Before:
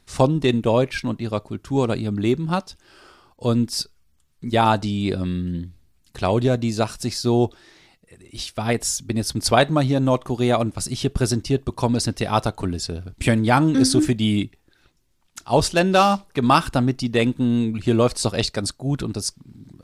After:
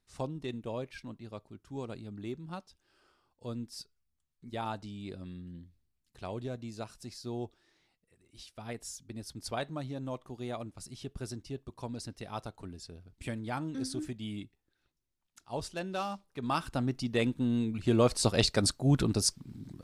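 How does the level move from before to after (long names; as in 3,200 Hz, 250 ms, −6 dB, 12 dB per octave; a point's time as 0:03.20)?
0:16.23 −19.5 dB
0:16.99 −10 dB
0:17.66 −10 dB
0:18.66 −2 dB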